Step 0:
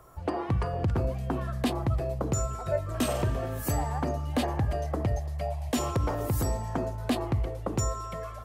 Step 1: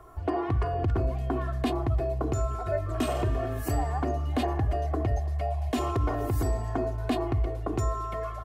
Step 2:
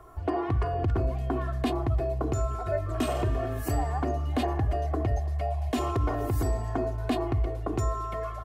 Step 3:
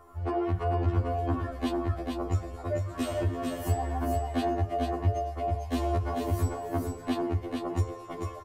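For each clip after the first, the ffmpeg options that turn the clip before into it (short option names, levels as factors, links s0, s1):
-filter_complex "[0:a]highshelf=f=3900:g=-9,aecho=1:1:2.8:0.65,asplit=2[s0][s1];[s1]alimiter=level_in=1.33:limit=0.0631:level=0:latency=1,volume=0.75,volume=0.794[s2];[s0][s2]amix=inputs=2:normalize=0,volume=0.708"
-af anull
-filter_complex "[0:a]asplit=2[s0][s1];[s1]aecho=0:1:444:0.631[s2];[s0][s2]amix=inputs=2:normalize=0,afftfilt=real='re*2*eq(mod(b,4),0)':imag='im*2*eq(mod(b,4),0)':win_size=2048:overlap=0.75"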